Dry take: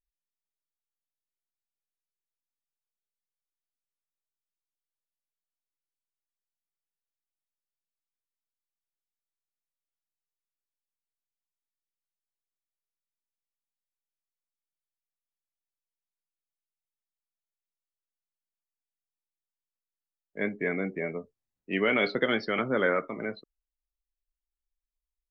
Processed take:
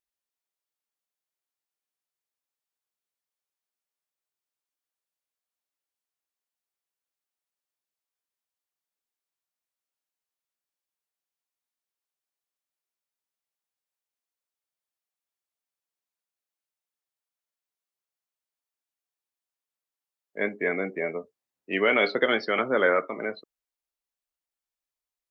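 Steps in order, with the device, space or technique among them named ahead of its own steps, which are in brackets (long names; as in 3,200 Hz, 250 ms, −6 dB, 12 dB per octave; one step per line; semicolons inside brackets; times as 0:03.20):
filter by subtraction (in parallel: low-pass filter 590 Hz 12 dB per octave + polarity inversion)
on the sum: level +3 dB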